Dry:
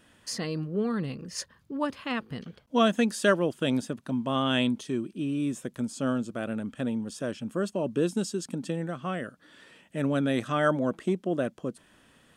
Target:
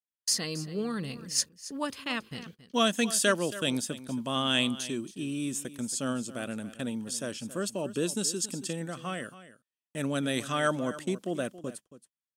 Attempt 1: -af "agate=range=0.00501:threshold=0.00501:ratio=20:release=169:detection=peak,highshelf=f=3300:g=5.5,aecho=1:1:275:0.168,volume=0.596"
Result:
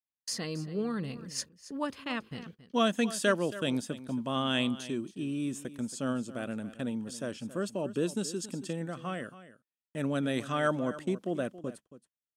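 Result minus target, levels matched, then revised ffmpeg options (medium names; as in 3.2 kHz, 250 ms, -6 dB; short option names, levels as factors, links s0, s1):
8 kHz band -7.0 dB
-af "agate=range=0.00501:threshold=0.00501:ratio=20:release=169:detection=peak,highshelf=f=3300:g=17,aecho=1:1:275:0.168,volume=0.596"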